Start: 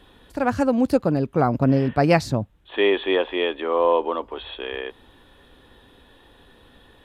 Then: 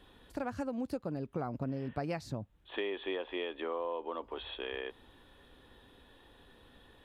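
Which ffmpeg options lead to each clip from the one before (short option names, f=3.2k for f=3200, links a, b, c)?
-af "acompressor=threshold=-26dB:ratio=6,volume=-7.5dB"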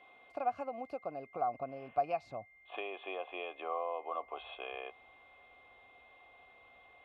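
-filter_complex "[0:a]asubboost=boost=4.5:cutoff=110,asplit=3[a][b][c];[a]bandpass=f=730:t=q:w=8,volume=0dB[d];[b]bandpass=f=1.09k:t=q:w=8,volume=-6dB[e];[c]bandpass=f=2.44k:t=q:w=8,volume=-9dB[f];[d][e][f]amix=inputs=3:normalize=0,aeval=exprs='val(0)+0.000282*sin(2*PI*2100*n/s)':c=same,volume=11dB"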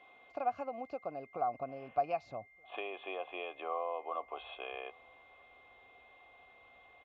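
-filter_complex "[0:a]asplit=2[a][b];[b]adelay=1224,volume=-29dB,highshelf=f=4k:g=-27.6[c];[a][c]amix=inputs=2:normalize=0,aresample=16000,aresample=44100"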